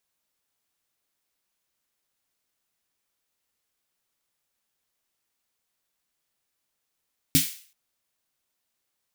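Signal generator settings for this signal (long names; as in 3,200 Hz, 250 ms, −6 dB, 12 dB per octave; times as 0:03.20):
synth snare length 0.38 s, tones 160 Hz, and 270 Hz, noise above 2,100 Hz, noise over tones 0 dB, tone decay 0.16 s, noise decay 0.45 s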